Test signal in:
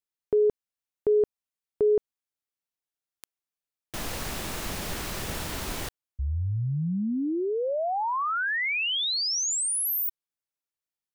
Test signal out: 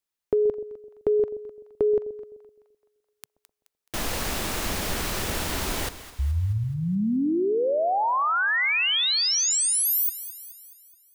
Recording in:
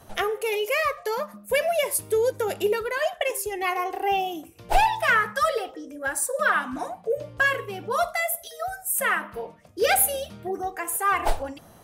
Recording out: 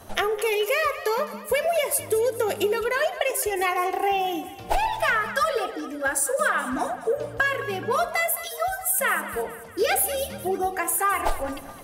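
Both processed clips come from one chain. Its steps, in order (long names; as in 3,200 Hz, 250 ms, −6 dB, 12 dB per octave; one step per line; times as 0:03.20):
downward compressor 5 to 1, threshold −25 dBFS
parametric band 140 Hz −6.5 dB 0.42 octaves
on a send: echo with a time of its own for lows and highs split 760 Hz, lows 128 ms, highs 213 ms, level −14 dB
on the sum: level +5 dB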